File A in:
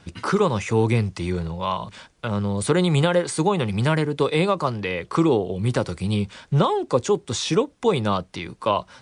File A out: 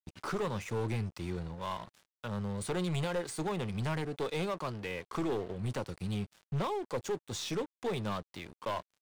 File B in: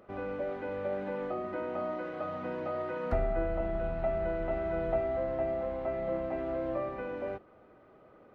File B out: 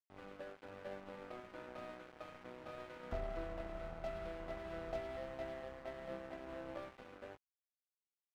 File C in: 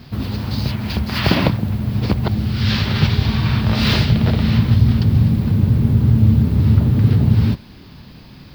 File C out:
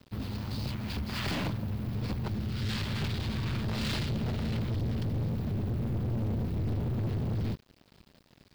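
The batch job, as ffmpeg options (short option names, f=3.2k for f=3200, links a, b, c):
-af "aeval=exprs='sgn(val(0))*max(abs(val(0))-0.0133,0)':c=same,aeval=exprs='(tanh(10*val(0)+0.25)-tanh(0.25))/10':c=same,volume=-8.5dB"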